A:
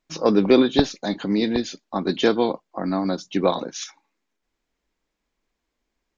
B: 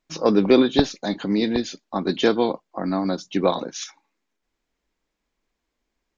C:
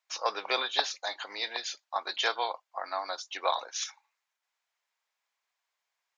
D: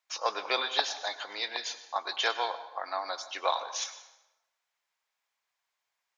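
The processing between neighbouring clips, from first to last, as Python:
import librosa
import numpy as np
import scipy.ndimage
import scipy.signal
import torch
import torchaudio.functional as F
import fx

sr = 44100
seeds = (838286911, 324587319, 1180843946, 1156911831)

y1 = x
y2 = scipy.signal.sosfilt(scipy.signal.butter(4, 750.0, 'highpass', fs=sr, output='sos'), y1)
y2 = F.gain(torch.from_numpy(y2), -1.5).numpy()
y3 = fx.rev_plate(y2, sr, seeds[0], rt60_s=1.0, hf_ratio=0.75, predelay_ms=85, drr_db=12.0)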